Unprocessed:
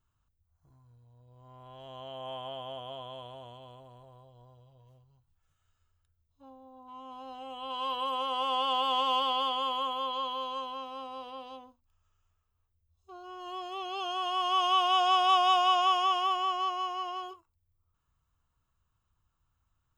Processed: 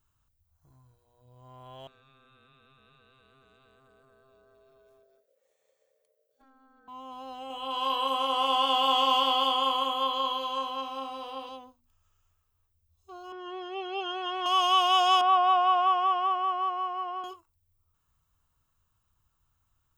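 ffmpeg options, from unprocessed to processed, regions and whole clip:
-filter_complex "[0:a]asettb=1/sr,asplit=3[a][b][c];[a]atrim=end=1.874[d];[b]atrim=start=1.87:end=6.88,asetpts=PTS-STARTPTS,afade=t=in:d=0.004:c=qsin,afade=t=out:st=5.006:d=0.004:c=qsin,equalizer=f=400:w=2.9:g=-13.5,acompressor=threshold=-57dB:ratio=20:attack=3.2:release=140:knee=1:detection=peak,aeval=exprs='val(0)*sin(2*PI*530*n/s)':c=same[e];[c]atrim=start=6.876[f];[d][e]acrossfade=d=0.004:c1=hsin:c2=qsin[g];[g][f]acrossfade=d=0.004:c1=qsin:c2=hsin,asettb=1/sr,asplit=3[h][i][j];[h]atrim=end=7.474[k];[i]atrim=start=7.47:end=11.49,asetpts=PTS-STARTPTS,afade=t=in:d=0.004:c=qsin,afade=t=out:st=4.016:d=0.004:c=qsin,asplit=2[l][m];[m]adelay=30,volume=-5dB[n];[l][n]amix=inputs=2:normalize=0,atrim=end_sample=177282,aecho=1:1:71:0.282,atrim=end_sample=177282[o];[j]atrim=start=11.486[p];[k][o]acrossfade=d=0.004:c1=hsin:c2=qsin[q];[q][p]acrossfade=d=0.004:c1=qsin:c2=hsin,asettb=1/sr,asplit=3[r][s][t];[r]atrim=end=13.324[u];[s]atrim=start=13.32:end=14.46,asetpts=PTS-STARTPTS,afade=t=in:d=0.004:c=qsin,afade=t=out:st=1.136:d=0.004:c=qsin,highpass=130,lowpass=2.5k,aecho=1:1:2.2:0.8,atrim=end_sample=50274[v];[t]atrim=start=14.456[w];[u][v]acrossfade=d=0.004:c1=hsin:c2=qsin[x];[x][w]acrossfade=d=0.004:c1=qsin:c2=hsin,asettb=1/sr,asplit=3[y][z][aa];[y]atrim=end=15.214[ab];[z]atrim=start=15.21:end=17.24,asetpts=PTS-STARTPTS,afade=t=in:d=0.004:c=qsin,afade=t=out:st=2.026:d=0.004:c=qsin,lowpass=f=5.6k:w=0.5412,lowpass=f=5.6k:w=1.3066,acrossover=split=280 2100:gain=0.1 1 0.112[ac][ad][ae];[ac][ad][ae]amix=inputs=3:normalize=0[af];[aa]atrim=start=17.236[ag];[ab][af]acrossfade=d=0.004:c1=hsin:c2=qsin[ah];[ah][ag]acrossfade=d=0.004:c1=qsin:c2=hsin,highshelf=f=6.2k:g=7.5,bandreject=f=60:t=h:w=6,bandreject=f=120:t=h:w=6,bandreject=f=180:t=h:w=6,bandreject=f=240:t=h:w=6,volume=2.5dB"

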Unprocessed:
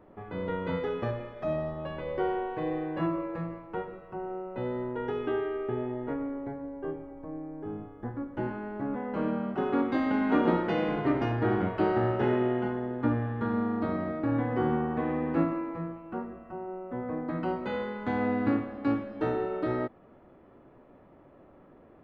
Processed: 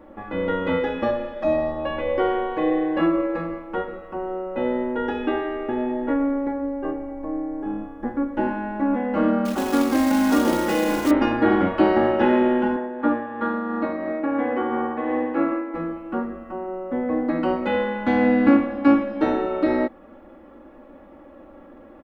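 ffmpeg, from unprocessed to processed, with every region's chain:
-filter_complex "[0:a]asettb=1/sr,asplit=3[a][b][c];[a]atrim=end=9.454[d];[b]atrim=start=9.45:end=11.11,asetpts=PTS-STARTPTS,afade=t=in:d=0.004:c=qsin,afade=t=out:st=1.656:d=0.004:c=qsin,equalizer=f=61:w=1.9:g=5.5,acompressor=threshold=-29dB:ratio=2:attack=3.2:release=140:knee=1:detection=peak,acrusher=bits=3:mode=log:mix=0:aa=0.000001[e];[c]atrim=start=11.106[f];[d][e]acrossfade=d=0.004:c1=hsin:c2=qsin[g];[g][f]acrossfade=d=0.004:c1=qsin:c2=hsin,asettb=1/sr,asplit=3[h][i][j];[h]atrim=end=12.764[k];[i]atrim=start=12.76:end=15.74,asetpts=PTS-STARTPTS,afade=t=in:d=0.004:c=qsin,afade=t=out:st=2.976:d=0.004:c=qsin,tremolo=f=2.9:d=0.37,bass=f=250:g=-12,treble=f=4k:g=-13[l];[j]atrim=start=15.736[m];[k][l]acrossfade=d=0.004:c1=hsin:c2=qsin[n];[n][m]acrossfade=d=0.004:c1=qsin:c2=hsin,equalizer=f=120:w=1.9:g=-9.5,aecho=1:1:3.6:0.76,volume=8dB"

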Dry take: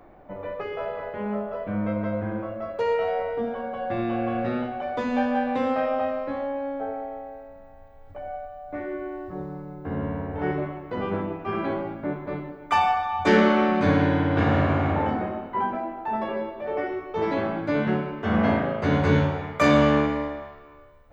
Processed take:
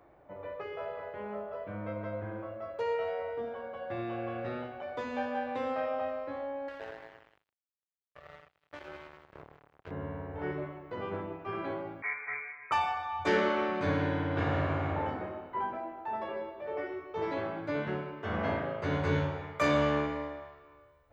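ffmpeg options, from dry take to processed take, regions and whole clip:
-filter_complex "[0:a]asettb=1/sr,asplit=3[a][b][c];[a]atrim=end=6.684[d];[b]atrim=start=6.68:end=9.91,asetpts=PTS-STARTPTS,afade=t=in:d=0.004:c=qsin,afade=t=out:st=3.226:d=0.004:c=qsin,aecho=1:1:1.9:0.51,atrim=end_sample=142443,acompressor=threshold=-38dB:ratio=1.5:attack=3.2:release=140:knee=1:detection=peak,acrusher=bits=4:mix=0:aa=0.5[e];[c]atrim=start=9.906[f];[d][e]acrossfade=d=0.004:c1=hsin:c2=qsin[g];[g][f]acrossfade=d=0.004:c1=qsin:c2=hsin,asettb=1/sr,asplit=3[h][i][j];[h]atrim=end=12.024[k];[i]atrim=start=12.02:end=12.72,asetpts=PTS-STARTPTS,afade=t=in:d=0.004:c=qsin,afade=t=out:st=0.696:d=0.004:c=qsin,equalizer=f=1.9k:t=o:w=1.9:g=7.5,lowpass=f=2.1k:t=q:w=0.5098,lowpass=f=2.1k:t=q:w=0.6013,lowpass=f=2.1k:t=q:w=0.9,lowpass=f=2.1k:t=q:w=2.563,afreqshift=-2500[l];[j]atrim=start=12.716[m];[k][l]acrossfade=d=0.004:c1=hsin:c2=qsin[n];[n][m]acrossfade=d=0.004:c1=qsin:c2=hsin,highpass=56,equalizer=f=220:t=o:w=0.51:g=-10,bandreject=f=750:w=22,volume=-7.5dB"

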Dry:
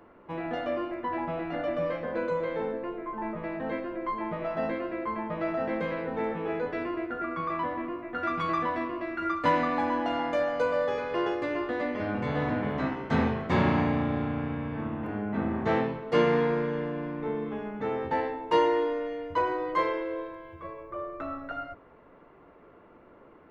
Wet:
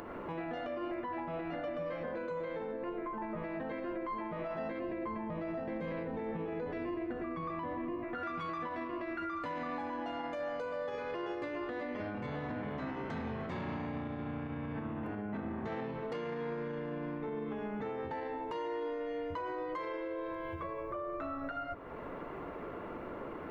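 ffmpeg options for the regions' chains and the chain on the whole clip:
-filter_complex "[0:a]asettb=1/sr,asplit=3[a][b][c];[a]atrim=end=4.794[d];[b]atrim=start=4.79:end=8.04,asetpts=PTS-STARTPTS,afade=t=in:d=0.004:c=qsin,afade=t=out:st=3.246:d=0.004:c=qsin,lowshelf=f=360:g=8,bandreject=f=1.4k:w=7.6[e];[c]atrim=start=8.036[f];[d][e]acrossfade=d=0.004:c1=hsin:c2=qsin[g];[g][f]acrossfade=d=0.004:c1=qsin:c2=hsin,acompressor=mode=upward:threshold=-31dB:ratio=2.5,alimiter=level_in=7dB:limit=-24dB:level=0:latency=1:release=120,volume=-7dB"

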